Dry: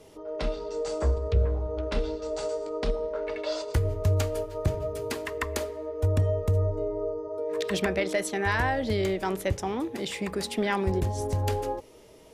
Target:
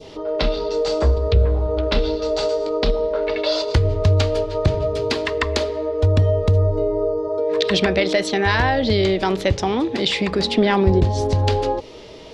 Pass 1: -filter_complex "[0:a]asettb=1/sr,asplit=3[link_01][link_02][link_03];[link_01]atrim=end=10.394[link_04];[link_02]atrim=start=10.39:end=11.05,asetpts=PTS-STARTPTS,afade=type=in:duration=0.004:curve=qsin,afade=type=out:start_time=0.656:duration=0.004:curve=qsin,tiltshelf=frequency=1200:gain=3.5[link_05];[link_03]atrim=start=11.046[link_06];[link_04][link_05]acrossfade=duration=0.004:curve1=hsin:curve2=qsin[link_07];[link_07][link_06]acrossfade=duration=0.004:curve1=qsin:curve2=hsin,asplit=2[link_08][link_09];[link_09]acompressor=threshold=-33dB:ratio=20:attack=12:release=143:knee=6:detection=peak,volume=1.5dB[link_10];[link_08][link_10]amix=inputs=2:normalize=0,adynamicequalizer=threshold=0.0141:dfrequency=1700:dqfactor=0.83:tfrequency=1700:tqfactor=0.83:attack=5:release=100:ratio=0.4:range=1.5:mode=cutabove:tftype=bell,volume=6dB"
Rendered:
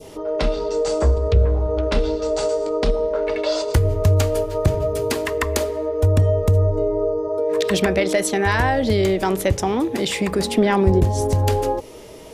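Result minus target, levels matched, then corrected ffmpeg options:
4,000 Hz band −5.0 dB
-filter_complex "[0:a]asettb=1/sr,asplit=3[link_01][link_02][link_03];[link_01]atrim=end=10.394[link_04];[link_02]atrim=start=10.39:end=11.05,asetpts=PTS-STARTPTS,afade=type=in:duration=0.004:curve=qsin,afade=type=out:start_time=0.656:duration=0.004:curve=qsin,tiltshelf=frequency=1200:gain=3.5[link_05];[link_03]atrim=start=11.046[link_06];[link_04][link_05]acrossfade=duration=0.004:curve1=hsin:curve2=qsin[link_07];[link_07][link_06]acrossfade=duration=0.004:curve1=qsin:curve2=hsin,asplit=2[link_08][link_09];[link_09]acompressor=threshold=-33dB:ratio=20:attack=12:release=143:knee=6:detection=peak,volume=1.5dB[link_10];[link_08][link_10]amix=inputs=2:normalize=0,adynamicequalizer=threshold=0.0141:dfrequency=1700:dqfactor=0.83:tfrequency=1700:tqfactor=0.83:attack=5:release=100:ratio=0.4:range=1.5:mode=cutabove:tftype=bell,lowpass=frequency=4200:width_type=q:width=2.1,volume=6dB"

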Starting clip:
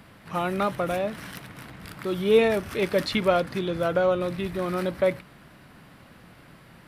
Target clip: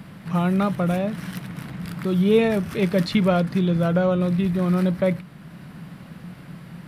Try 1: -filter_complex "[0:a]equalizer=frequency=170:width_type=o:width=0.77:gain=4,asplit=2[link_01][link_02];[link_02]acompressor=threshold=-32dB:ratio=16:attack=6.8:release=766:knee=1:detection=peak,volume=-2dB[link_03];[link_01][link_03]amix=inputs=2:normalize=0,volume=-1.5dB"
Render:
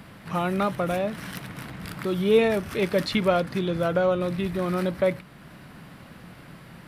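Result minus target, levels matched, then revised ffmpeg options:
125 Hz band −5.0 dB
-filter_complex "[0:a]equalizer=frequency=170:width_type=o:width=0.77:gain=14,asplit=2[link_01][link_02];[link_02]acompressor=threshold=-32dB:ratio=16:attack=6.8:release=766:knee=1:detection=peak,volume=-2dB[link_03];[link_01][link_03]amix=inputs=2:normalize=0,volume=-1.5dB"

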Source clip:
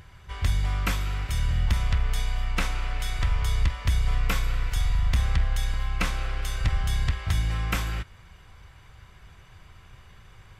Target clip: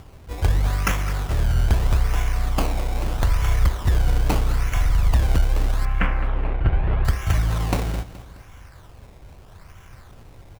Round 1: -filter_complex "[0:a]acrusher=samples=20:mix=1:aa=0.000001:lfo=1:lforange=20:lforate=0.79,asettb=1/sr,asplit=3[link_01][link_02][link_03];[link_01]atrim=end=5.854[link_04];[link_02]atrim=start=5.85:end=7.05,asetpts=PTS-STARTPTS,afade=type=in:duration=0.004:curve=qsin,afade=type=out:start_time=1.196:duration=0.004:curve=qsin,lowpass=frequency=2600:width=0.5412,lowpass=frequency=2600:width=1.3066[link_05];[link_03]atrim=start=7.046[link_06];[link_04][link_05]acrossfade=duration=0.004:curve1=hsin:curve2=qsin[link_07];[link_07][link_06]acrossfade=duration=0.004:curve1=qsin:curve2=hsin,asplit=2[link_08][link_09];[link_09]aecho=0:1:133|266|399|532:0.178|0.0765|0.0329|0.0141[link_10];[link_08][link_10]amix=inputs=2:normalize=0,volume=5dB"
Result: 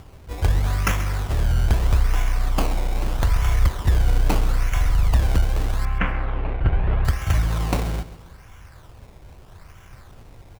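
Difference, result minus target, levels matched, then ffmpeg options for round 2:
echo 78 ms early
-filter_complex "[0:a]acrusher=samples=20:mix=1:aa=0.000001:lfo=1:lforange=20:lforate=0.79,asettb=1/sr,asplit=3[link_01][link_02][link_03];[link_01]atrim=end=5.854[link_04];[link_02]atrim=start=5.85:end=7.05,asetpts=PTS-STARTPTS,afade=type=in:duration=0.004:curve=qsin,afade=type=out:start_time=1.196:duration=0.004:curve=qsin,lowpass=frequency=2600:width=0.5412,lowpass=frequency=2600:width=1.3066[link_05];[link_03]atrim=start=7.046[link_06];[link_04][link_05]acrossfade=duration=0.004:curve1=hsin:curve2=qsin[link_07];[link_07][link_06]acrossfade=duration=0.004:curve1=qsin:curve2=hsin,asplit=2[link_08][link_09];[link_09]aecho=0:1:211|422|633|844:0.178|0.0765|0.0329|0.0141[link_10];[link_08][link_10]amix=inputs=2:normalize=0,volume=5dB"

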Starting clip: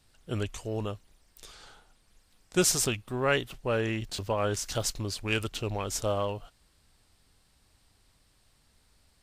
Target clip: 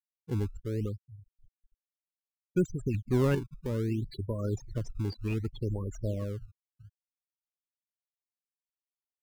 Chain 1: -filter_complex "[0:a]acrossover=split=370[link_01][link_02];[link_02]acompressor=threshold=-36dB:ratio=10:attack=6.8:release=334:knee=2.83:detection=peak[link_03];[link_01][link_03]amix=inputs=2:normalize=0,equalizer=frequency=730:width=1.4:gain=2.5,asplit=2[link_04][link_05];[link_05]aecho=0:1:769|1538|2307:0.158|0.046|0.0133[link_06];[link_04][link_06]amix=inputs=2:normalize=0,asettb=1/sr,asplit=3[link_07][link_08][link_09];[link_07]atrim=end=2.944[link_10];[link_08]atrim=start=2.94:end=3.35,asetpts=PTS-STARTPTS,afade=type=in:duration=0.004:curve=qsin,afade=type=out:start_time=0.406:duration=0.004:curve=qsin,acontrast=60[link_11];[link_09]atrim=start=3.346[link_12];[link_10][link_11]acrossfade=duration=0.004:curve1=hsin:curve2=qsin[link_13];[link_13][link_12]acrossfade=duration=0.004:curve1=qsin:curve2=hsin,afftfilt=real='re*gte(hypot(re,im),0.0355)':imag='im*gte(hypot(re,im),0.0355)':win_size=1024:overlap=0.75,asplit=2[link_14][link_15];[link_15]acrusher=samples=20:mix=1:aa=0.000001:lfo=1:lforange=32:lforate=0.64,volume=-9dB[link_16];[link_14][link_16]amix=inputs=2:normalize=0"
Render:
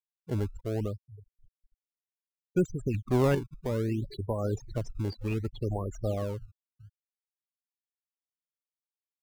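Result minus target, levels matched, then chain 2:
1,000 Hz band +5.0 dB
-filter_complex "[0:a]acrossover=split=370[link_01][link_02];[link_02]acompressor=threshold=-36dB:ratio=10:attack=6.8:release=334:knee=2.83:detection=peak[link_03];[link_01][link_03]amix=inputs=2:normalize=0,equalizer=frequency=730:width=1.4:gain=-5.5,asplit=2[link_04][link_05];[link_05]aecho=0:1:769|1538|2307:0.158|0.046|0.0133[link_06];[link_04][link_06]amix=inputs=2:normalize=0,asettb=1/sr,asplit=3[link_07][link_08][link_09];[link_07]atrim=end=2.944[link_10];[link_08]atrim=start=2.94:end=3.35,asetpts=PTS-STARTPTS,afade=type=in:duration=0.004:curve=qsin,afade=type=out:start_time=0.406:duration=0.004:curve=qsin,acontrast=60[link_11];[link_09]atrim=start=3.346[link_12];[link_10][link_11]acrossfade=duration=0.004:curve1=hsin:curve2=qsin[link_13];[link_13][link_12]acrossfade=duration=0.004:curve1=qsin:curve2=hsin,afftfilt=real='re*gte(hypot(re,im),0.0355)':imag='im*gte(hypot(re,im),0.0355)':win_size=1024:overlap=0.75,asplit=2[link_14][link_15];[link_15]acrusher=samples=20:mix=1:aa=0.000001:lfo=1:lforange=32:lforate=0.64,volume=-9dB[link_16];[link_14][link_16]amix=inputs=2:normalize=0"

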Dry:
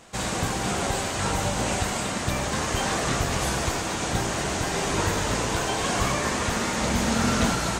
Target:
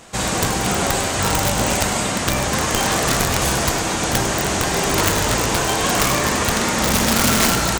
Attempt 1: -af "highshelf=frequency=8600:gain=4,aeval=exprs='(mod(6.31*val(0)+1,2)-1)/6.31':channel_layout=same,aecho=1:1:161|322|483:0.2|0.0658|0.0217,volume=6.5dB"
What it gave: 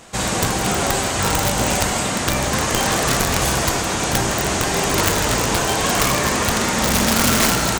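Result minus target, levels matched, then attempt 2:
echo 60 ms late
-af "highshelf=frequency=8600:gain=4,aeval=exprs='(mod(6.31*val(0)+1,2)-1)/6.31':channel_layout=same,aecho=1:1:101|202|303:0.2|0.0658|0.0217,volume=6.5dB"

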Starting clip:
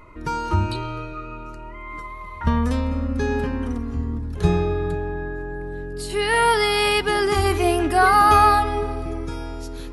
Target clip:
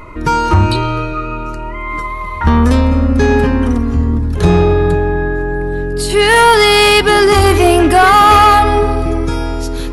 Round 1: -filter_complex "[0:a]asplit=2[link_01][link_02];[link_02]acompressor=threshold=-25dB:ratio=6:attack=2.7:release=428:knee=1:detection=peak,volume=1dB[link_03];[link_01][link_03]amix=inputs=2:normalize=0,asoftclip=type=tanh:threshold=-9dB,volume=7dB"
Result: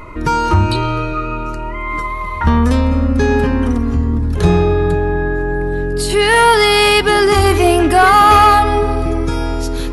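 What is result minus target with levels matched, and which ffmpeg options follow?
downward compressor: peak gain reduction +9 dB
-filter_complex "[0:a]asplit=2[link_01][link_02];[link_02]acompressor=threshold=-14dB:ratio=6:attack=2.7:release=428:knee=1:detection=peak,volume=1dB[link_03];[link_01][link_03]amix=inputs=2:normalize=0,asoftclip=type=tanh:threshold=-9dB,volume=7dB"

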